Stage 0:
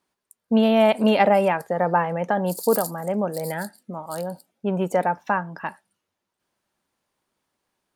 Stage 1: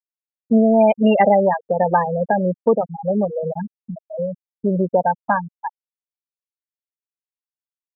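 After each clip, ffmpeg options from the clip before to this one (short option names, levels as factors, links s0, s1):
-filter_complex "[0:a]afftfilt=real='re*gte(hypot(re,im),0.224)':imag='im*gte(hypot(re,im),0.224)':win_size=1024:overlap=0.75,asplit=2[s0][s1];[s1]acompressor=threshold=0.0398:ratio=6,volume=1.26[s2];[s0][s2]amix=inputs=2:normalize=0,volume=1.19"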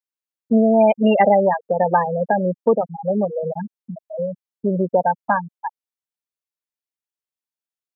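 -af "lowshelf=f=69:g=-12"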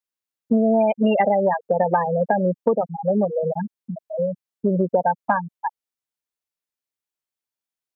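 -af "acompressor=threshold=0.158:ratio=6,volume=1.19"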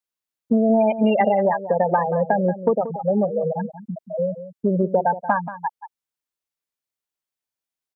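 -filter_complex "[0:a]asplit=2[s0][s1];[s1]adelay=180.8,volume=0.224,highshelf=f=4000:g=-4.07[s2];[s0][s2]amix=inputs=2:normalize=0"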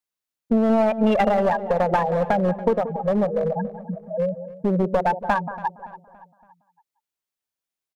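-filter_complex "[0:a]aeval=exprs='clip(val(0),-1,0.126)':c=same,asplit=2[s0][s1];[s1]adelay=283,lowpass=f=2600:p=1,volume=0.141,asplit=2[s2][s3];[s3]adelay=283,lowpass=f=2600:p=1,volume=0.51,asplit=2[s4][s5];[s5]adelay=283,lowpass=f=2600:p=1,volume=0.51,asplit=2[s6][s7];[s7]adelay=283,lowpass=f=2600:p=1,volume=0.51[s8];[s0][s2][s4][s6][s8]amix=inputs=5:normalize=0"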